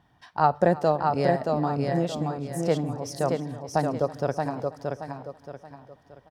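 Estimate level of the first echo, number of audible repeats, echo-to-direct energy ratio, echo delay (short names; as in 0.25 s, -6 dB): -20.0 dB, 7, -3.5 dB, 0.326 s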